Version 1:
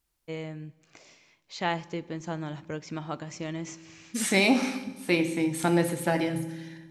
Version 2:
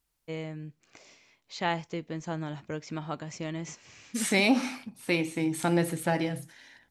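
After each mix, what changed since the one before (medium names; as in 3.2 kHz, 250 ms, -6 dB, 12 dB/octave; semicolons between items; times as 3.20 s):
reverb: off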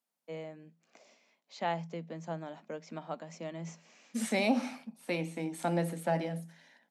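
master: add rippled Chebyshev high-pass 160 Hz, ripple 9 dB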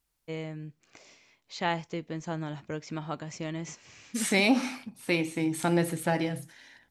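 master: remove rippled Chebyshev high-pass 160 Hz, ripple 9 dB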